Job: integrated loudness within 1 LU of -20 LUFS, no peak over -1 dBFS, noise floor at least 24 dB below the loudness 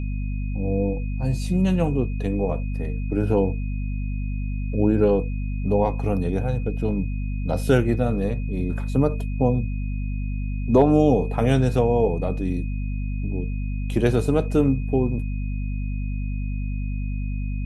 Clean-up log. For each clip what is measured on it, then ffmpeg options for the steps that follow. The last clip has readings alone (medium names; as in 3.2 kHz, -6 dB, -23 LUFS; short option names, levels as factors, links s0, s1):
hum 50 Hz; highest harmonic 250 Hz; hum level -24 dBFS; steady tone 2.5 kHz; tone level -45 dBFS; loudness -24.0 LUFS; peak level -5.0 dBFS; loudness target -20.0 LUFS
-> -af "bandreject=f=50:t=h:w=4,bandreject=f=100:t=h:w=4,bandreject=f=150:t=h:w=4,bandreject=f=200:t=h:w=4,bandreject=f=250:t=h:w=4"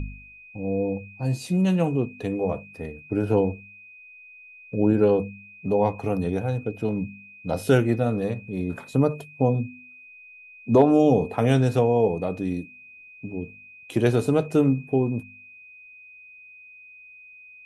hum not found; steady tone 2.5 kHz; tone level -45 dBFS
-> -af "bandreject=f=2500:w=30"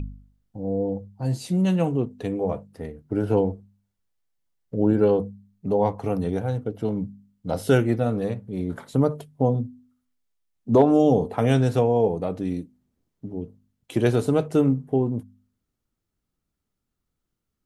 steady tone not found; loudness -23.5 LUFS; peak level -5.5 dBFS; loudness target -20.0 LUFS
-> -af "volume=1.5"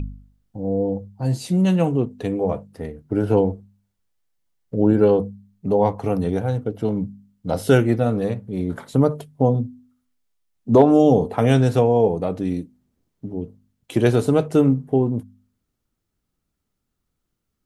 loudness -20.0 LUFS; peak level -2.0 dBFS; noise floor -78 dBFS